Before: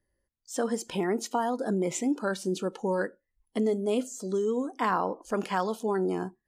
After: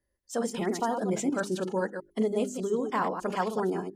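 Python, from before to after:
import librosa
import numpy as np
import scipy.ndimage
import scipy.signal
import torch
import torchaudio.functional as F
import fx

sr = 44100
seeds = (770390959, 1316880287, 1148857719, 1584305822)

y = fx.reverse_delay(x, sr, ms=164, wet_db=-6.5)
y = fx.stretch_vocoder(y, sr, factor=0.61)
y = fx.hum_notches(y, sr, base_hz=50, count=8)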